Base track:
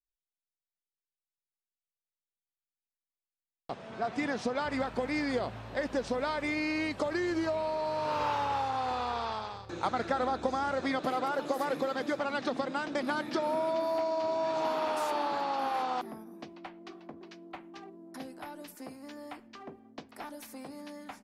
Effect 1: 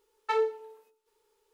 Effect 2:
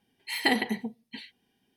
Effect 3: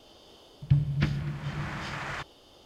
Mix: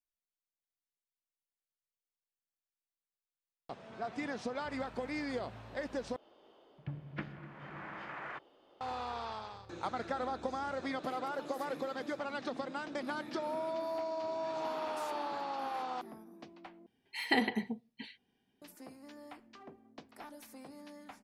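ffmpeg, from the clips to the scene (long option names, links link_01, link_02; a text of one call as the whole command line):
ffmpeg -i bed.wav -i cue0.wav -i cue1.wav -i cue2.wav -filter_complex "[0:a]volume=-6.5dB[link_01];[3:a]acrossover=split=220 2500:gain=0.0891 1 0.0794[link_02][link_03][link_04];[link_02][link_03][link_04]amix=inputs=3:normalize=0[link_05];[2:a]lowpass=frequency=3400:poles=1[link_06];[link_01]asplit=3[link_07][link_08][link_09];[link_07]atrim=end=6.164[link_10];[link_05]atrim=end=2.65,asetpts=PTS-STARTPTS,volume=-6dB[link_11];[link_08]atrim=start=8.806:end=16.864[link_12];[link_06]atrim=end=1.76,asetpts=PTS-STARTPTS,volume=-4dB[link_13];[link_09]atrim=start=18.616[link_14];[link_10][link_11]acrossfade=duration=0.004:curve1=hsin:curve2=hsin[link_15];[link_15][link_12]acrossfade=duration=0.004:curve1=hsin:curve2=hsin[link_16];[link_16][link_13]acrossfade=duration=0.004:curve1=hsin:curve2=hsin[link_17];[link_17][link_14]acrossfade=duration=0.004:curve1=hsin:curve2=hsin" out.wav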